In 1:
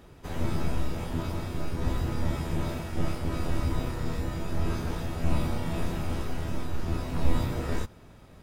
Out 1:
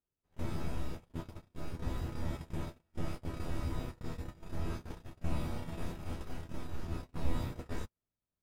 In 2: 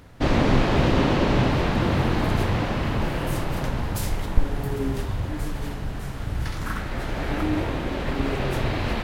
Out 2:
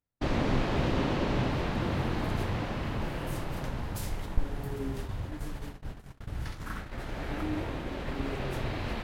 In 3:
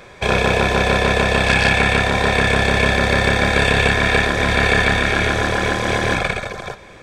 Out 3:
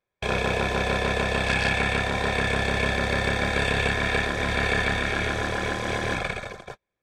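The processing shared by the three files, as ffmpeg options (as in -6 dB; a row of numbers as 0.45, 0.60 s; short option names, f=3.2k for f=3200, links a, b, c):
-af "agate=range=-35dB:threshold=-28dB:ratio=16:detection=peak,volume=-8.5dB"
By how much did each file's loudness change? -9.5, -8.5, -8.5 LU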